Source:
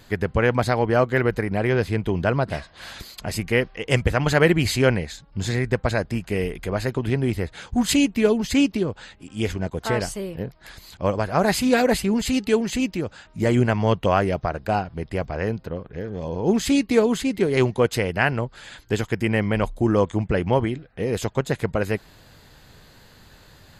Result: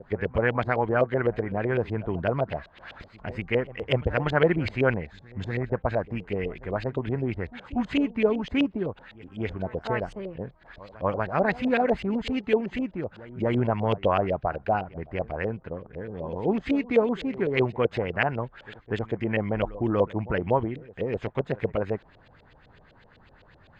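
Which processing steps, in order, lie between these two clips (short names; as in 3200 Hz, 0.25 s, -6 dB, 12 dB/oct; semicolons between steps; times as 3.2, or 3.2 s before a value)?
reverse echo 0.24 s -19 dB; LFO low-pass saw up 7.9 Hz 500–3300 Hz; gain -6.5 dB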